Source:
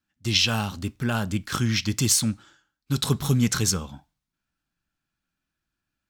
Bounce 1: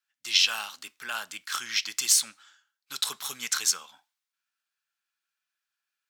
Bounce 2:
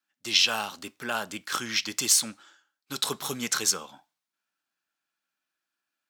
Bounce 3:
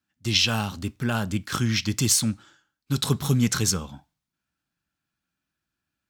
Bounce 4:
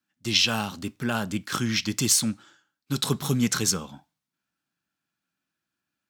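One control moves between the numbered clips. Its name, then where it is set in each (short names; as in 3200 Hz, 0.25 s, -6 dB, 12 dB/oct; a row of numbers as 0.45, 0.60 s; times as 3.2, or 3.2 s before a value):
HPF, cutoff: 1300, 490, 62, 160 Hz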